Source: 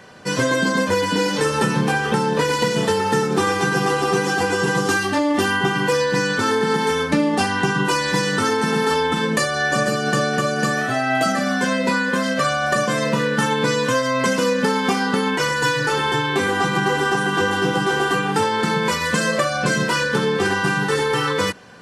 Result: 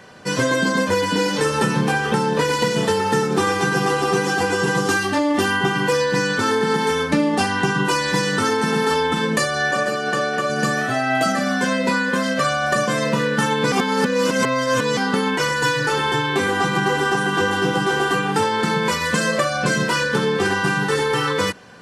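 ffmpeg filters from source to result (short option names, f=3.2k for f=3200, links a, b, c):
-filter_complex "[0:a]asettb=1/sr,asplit=3[a][b][c];[a]atrim=end=9.714[d];[b]atrim=start=9.71:end=10.5,asetpts=PTS-STARTPTS,afade=t=in:d=0.004:c=qsin,afade=t=out:st=0.786:d=0.004:c=qsin,bass=f=250:g=-11,treble=f=4k:g=-6[e];[c]atrim=start=10.496[f];[d][e]acrossfade=d=0.004:c1=hsin:c2=qsin[g];[g][f]acrossfade=d=0.004:c1=qsin:c2=hsin,asplit=3[h][i][j];[h]atrim=end=13.722[k];[i]atrim=start=13.718:end=14.972,asetpts=PTS-STARTPTS,areverse[l];[j]atrim=start=14.968[m];[k][l]acrossfade=d=0.004:c1=hsin:c2=hsin[n];[n][m]acrossfade=d=0.004:c1=hsin:c2=hsin"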